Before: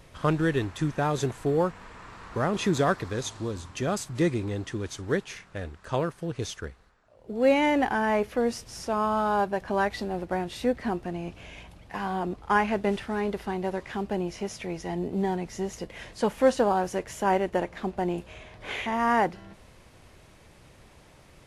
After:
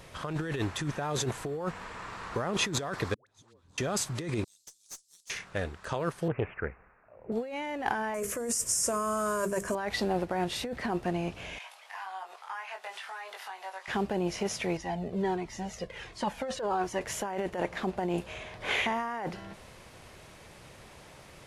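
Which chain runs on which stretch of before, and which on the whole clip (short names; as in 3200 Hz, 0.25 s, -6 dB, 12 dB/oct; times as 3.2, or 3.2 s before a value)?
3.14–3.78 flipped gate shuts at -29 dBFS, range -30 dB + compressor, threshold -57 dBFS + dispersion highs, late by 0.127 s, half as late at 630 Hz
4.44–5.3 inverse Chebyshev high-pass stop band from 1700 Hz, stop band 60 dB + tube stage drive 41 dB, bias 0.8
6.28–7.32 steep low-pass 2600 Hz 96 dB/oct + Doppler distortion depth 0.26 ms
8.14–9.75 Butterworth band-stop 810 Hz, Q 3.6 + resonant high shelf 5500 Hz +12.5 dB, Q 3 + notches 50/100/150/200/250/300/350/400/450 Hz
11.58–13.88 HPF 760 Hz 24 dB/oct + compressor 3:1, threshold -47 dBFS + doubler 21 ms -3.5 dB
14.77–17.01 high shelf 9700 Hz -11.5 dB + cascading flanger falling 1.4 Hz
whole clip: low shelf 100 Hz -9 dB; negative-ratio compressor -31 dBFS, ratio -1; bell 280 Hz -3.5 dB 0.77 oct; gain +1 dB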